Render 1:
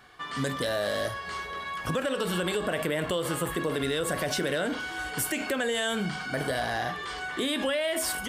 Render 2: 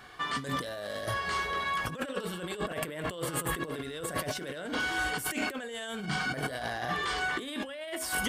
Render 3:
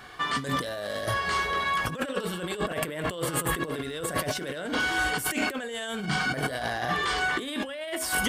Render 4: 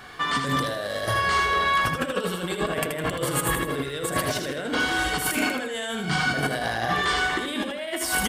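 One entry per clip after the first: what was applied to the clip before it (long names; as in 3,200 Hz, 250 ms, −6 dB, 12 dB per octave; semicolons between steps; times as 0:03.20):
compressor whose output falls as the input rises −33 dBFS, ratio −0.5
surface crackle 45 per second −56 dBFS; level +4.5 dB
repeating echo 79 ms, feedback 37%, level −6 dB; level +2.5 dB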